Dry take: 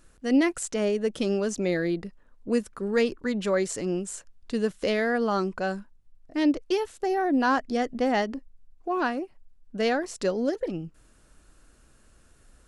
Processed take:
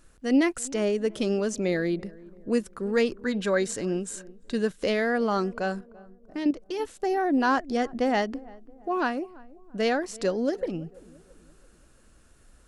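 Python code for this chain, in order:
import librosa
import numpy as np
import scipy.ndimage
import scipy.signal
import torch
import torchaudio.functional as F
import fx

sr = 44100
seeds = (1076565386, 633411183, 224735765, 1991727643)

p1 = fx.small_body(x, sr, hz=(1600.0, 3800.0), ring_ms=45, db=12, at=(3.23, 4.76))
p2 = fx.level_steps(p1, sr, step_db=10, at=(5.78, 6.79), fade=0.02)
y = p2 + fx.echo_filtered(p2, sr, ms=337, feedback_pct=48, hz=950.0, wet_db=-20.5, dry=0)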